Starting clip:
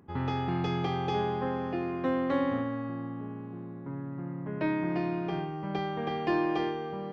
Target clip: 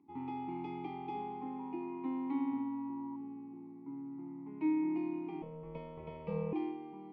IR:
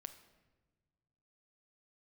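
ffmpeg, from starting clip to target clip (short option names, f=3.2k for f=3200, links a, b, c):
-filter_complex "[0:a]asplit=3[a][b][c];[a]bandpass=f=300:t=q:w=8,volume=0dB[d];[b]bandpass=f=870:t=q:w=8,volume=-6dB[e];[c]bandpass=f=2.24k:t=q:w=8,volume=-9dB[f];[d][e][f]amix=inputs=3:normalize=0,bandreject=f=550:w=12,asettb=1/sr,asplit=3[g][h][i];[g]atrim=end=1.594[j];[h]atrim=start=1.59:end=3.16,asetpts=PTS-STARTPTS,afade=t=in:d=0.004:c=qsin,afade=t=out:st=1.566:d=0.004:c=qsin,aeval=exprs='val(0)+0.00316*sin(2*PI*960*n/s)':c=same[k];[i]atrim=start=3.156[l];[j][k]acrossfade=d=0.004:c1=hsin:c2=qsin[m];[m][l]acrossfade=d=0.004:c1=qsin:c2=hsin,asettb=1/sr,asplit=3[n][o][p];[n]atrim=end=5.424[q];[o]atrim=start=5.42:end=6.53,asetpts=PTS-STARTPTS,afade=t=in:d=0.004:c=qsin,afade=t=out:st=1.106:d=0.004:c=qsin,aeval=exprs='val(0)*sin(2*PI*150*n/s)':c=same[r];[p]atrim=start=6.526[s];[q][r]acrossfade=d=0.004:c1=hsin:c2=qsin[t];[t][s]acrossfade=d=0.004:c1=qsin:c2=hsin,volume=1dB"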